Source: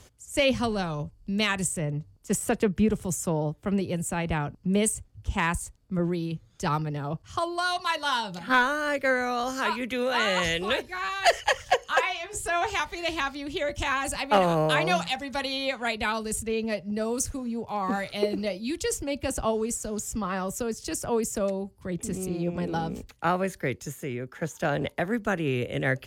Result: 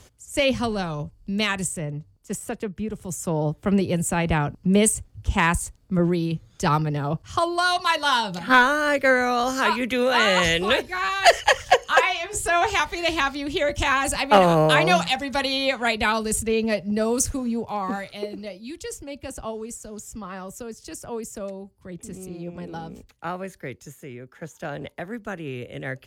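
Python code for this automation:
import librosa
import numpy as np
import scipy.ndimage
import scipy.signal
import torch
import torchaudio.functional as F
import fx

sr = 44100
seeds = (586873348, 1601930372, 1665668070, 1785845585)

y = fx.gain(x, sr, db=fx.line((1.49, 2.0), (2.84, -7.0), (3.53, 6.0), (17.53, 6.0), (18.27, -5.5)))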